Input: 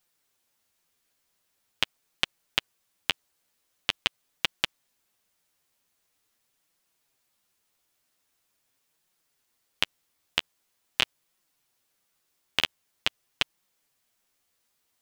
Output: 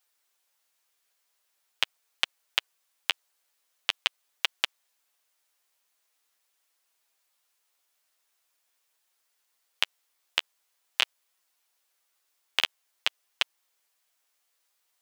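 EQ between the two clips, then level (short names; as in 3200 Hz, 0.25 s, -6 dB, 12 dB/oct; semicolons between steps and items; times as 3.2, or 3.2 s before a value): HPF 560 Hz 12 dB/oct; 0.0 dB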